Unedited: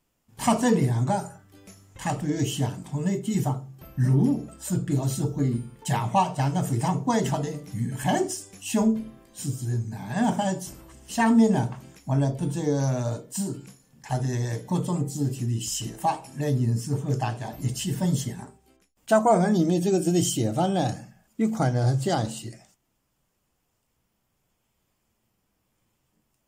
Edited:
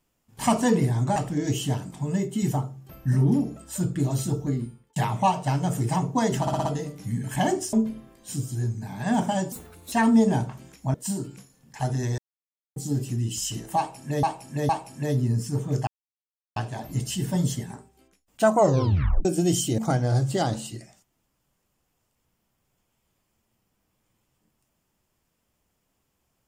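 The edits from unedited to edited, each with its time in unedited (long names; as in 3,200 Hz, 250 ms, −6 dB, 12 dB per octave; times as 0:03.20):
0:01.16–0:02.08: remove
0:05.32–0:05.88: fade out
0:07.33: stutter 0.06 s, 5 plays
0:08.41–0:08.83: remove
0:10.62–0:11.15: play speed 132%
0:12.17–0:13.24: remove
0:14.48–0:15.06: silence
0:16.07–0:16.53: repeat, 3 plays
0:17.25: splice in silence 0.69 s
0:19.26: tape stop 0.68 s
0:20.47–0:21.50: remove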